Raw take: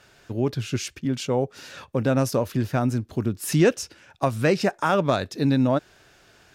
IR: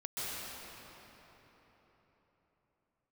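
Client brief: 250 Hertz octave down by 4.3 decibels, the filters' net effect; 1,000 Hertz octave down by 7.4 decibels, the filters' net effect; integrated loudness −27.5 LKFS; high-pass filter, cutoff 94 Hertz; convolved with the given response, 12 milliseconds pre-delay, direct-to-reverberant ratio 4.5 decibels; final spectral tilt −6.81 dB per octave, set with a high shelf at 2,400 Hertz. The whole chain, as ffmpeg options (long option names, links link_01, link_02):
-filter_complex "[0:a]highpass=94,equalizer=frequency=250:width_type=o:gain=-4.5,equalizer=frequency=1000:width_type=o:gain=-9,highshelf=frequency=2400:gain=-7.5,asplit=2[link_01][link_02];[1:a]atrim=start_sample=2205,adelay=12[link_03];[link_02][link_03]afir=irnorm=-1:irlink=0,volume=-8.5dB[link_04];[link_01][link_04]amix=inputs=2:normalize=0,volume=-0.5dB"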